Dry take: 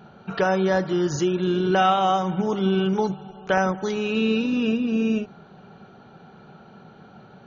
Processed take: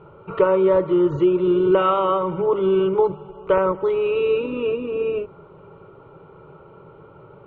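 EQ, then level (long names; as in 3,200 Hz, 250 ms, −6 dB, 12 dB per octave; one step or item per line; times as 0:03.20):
low-pass filter 1,400 Hz 12 dB per octave
phaser with its sweep stopped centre 1,100 Hz, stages 8
+8.0 dB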